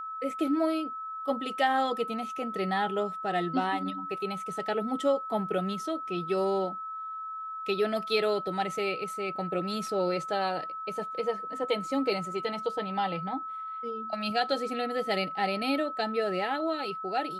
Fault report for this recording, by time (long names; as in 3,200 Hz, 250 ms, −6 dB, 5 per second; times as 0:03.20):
whistle 1,300 Hz −35 dBFS